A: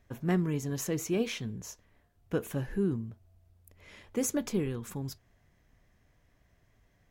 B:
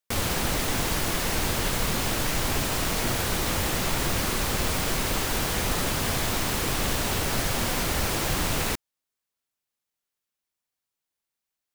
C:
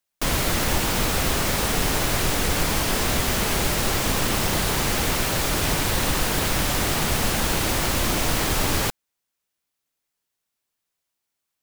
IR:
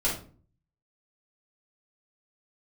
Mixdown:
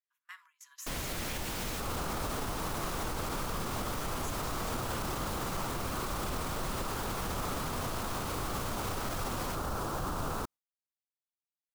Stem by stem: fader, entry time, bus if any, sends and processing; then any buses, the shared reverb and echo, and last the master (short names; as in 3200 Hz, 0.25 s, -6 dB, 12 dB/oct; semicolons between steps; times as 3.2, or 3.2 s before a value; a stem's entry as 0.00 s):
-8.0 dB, 0.00 s, send -21 dB, Chebyshev high-pass 1000 Hz, order 6
-4.5 dB, 1.70 s, no send, resonant high shelf 1600 Hz -7.5 dB, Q 3
-13.0 dB, 0.65 s, no send, dry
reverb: on, RT60 0.40 s, pre-delay 3 ms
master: gate with hold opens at -42 dBFS; limiter -26 dBFS, peak gain reduction 9.5 dB